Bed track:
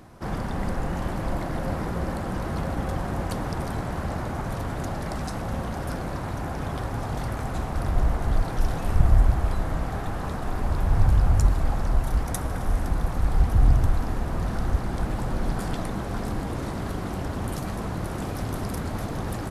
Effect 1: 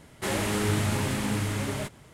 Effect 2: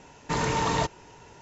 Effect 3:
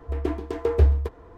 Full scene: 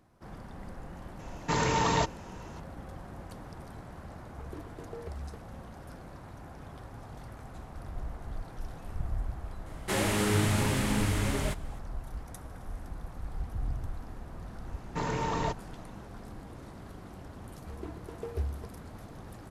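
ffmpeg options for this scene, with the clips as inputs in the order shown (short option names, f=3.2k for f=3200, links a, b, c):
-filter_complex "[2:a]asplit=2[a][b];[3:a]asplit=2[c][d];[0:a]volume=-16dB[e];[c]acompressor=threshold=-21dB:ratio=6:attack=3.2:release=140:knee=1:detection=peak[f];[b]highshelf=f=2.1k:g=-7.5[g];[a]atrim=end=1.41,asetpts=PTS-STARTPTS,volume=-1dB,afade=t=in:d=0.004:c=hsin,afade=t=out:st=1.406:d=0.004:c=hsin,adelay=1190[h];[f]atrim=end=1.37,asetpts=PTS-STARTPTS,volume=-16dB,afade=t=in:d=0.004:c=hsin,afade=t=out:st=1.366:d=0.004:c=hsin,adelay=4280[i];[1:a]atrim=end=2.13,asetpts=PTS-STARTPTS,volume=-0.5dB,afade=t=in:d=0.004:c=hsin,afade=t=out:st=2.126:d=0.004:c=hsin,adelay=9660[j];[g]atrim=end=1.41,asetpts=PTS-STARTPTS,volume=-4.5dB,afade=t=in:d=0.004:c=hsin,afade=t=out:st=1.406:d=0.004:c=hsin,adelay=14660[k];[d]atrim=end=1.37,asetpts=PTS-STARTPTS,volume=-15.5dB,afade=t=in:d=0.004:c=hsin,afade=t=out:st=1.366:d=0.004:c=hsin,adelay=17580[l];[e][h][i][j][k][l]amix=inputs=6:normalize=0"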